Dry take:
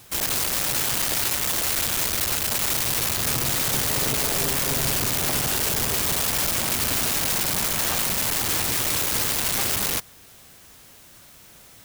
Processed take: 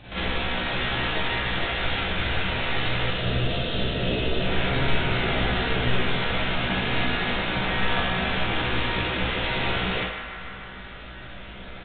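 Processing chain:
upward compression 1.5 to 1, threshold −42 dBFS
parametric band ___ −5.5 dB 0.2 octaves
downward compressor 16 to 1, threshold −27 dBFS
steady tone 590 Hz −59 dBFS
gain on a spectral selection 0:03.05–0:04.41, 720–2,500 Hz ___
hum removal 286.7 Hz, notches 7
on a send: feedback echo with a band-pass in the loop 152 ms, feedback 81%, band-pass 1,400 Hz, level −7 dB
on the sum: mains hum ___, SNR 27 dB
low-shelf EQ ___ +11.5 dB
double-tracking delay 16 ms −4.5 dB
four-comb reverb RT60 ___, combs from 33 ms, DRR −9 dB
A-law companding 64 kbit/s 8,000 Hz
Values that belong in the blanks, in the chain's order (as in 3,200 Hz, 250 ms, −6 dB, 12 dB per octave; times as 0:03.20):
1,100 Hz, −9 dB, 50 Hz, 62 Hz, 0.57 s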